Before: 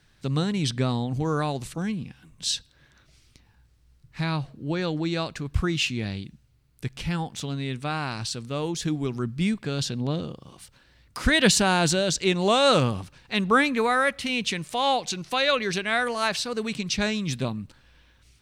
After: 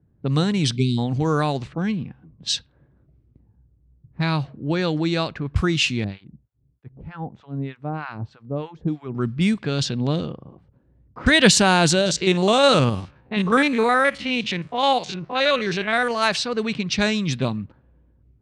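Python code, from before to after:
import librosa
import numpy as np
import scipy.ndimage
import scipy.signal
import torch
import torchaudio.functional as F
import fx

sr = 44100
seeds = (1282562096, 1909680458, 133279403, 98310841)

y = fx.spec_erase(x, sr, start_s=0.76, length_s=0.22, low_hz=430.0, high_hz=2100.0)
y = fx.harmonic_tremolo(y, sr, hz=3.2, depth_pct=100, crossover_hz=890.0, at=(6.04, 9.15))
y = fx.spec_steps(y, sr, hold_ms=50, at=(12.01, 16.11))
y = scipy.signal.sosfilt(scipy.signal.butter(2, 9100.0, 'lowpass', fs=sr, output='sos'), y)
y = fx.env_lowpass(y, sr, base_hz=340.0, full_db=-21.5)
y = scipy.signal.sosfilt(scipy.signal.butter(2, 59.0, 'highpass', fs=sr, output='sos'), y)
y = y * librosa.db_to_amplitude(5.0)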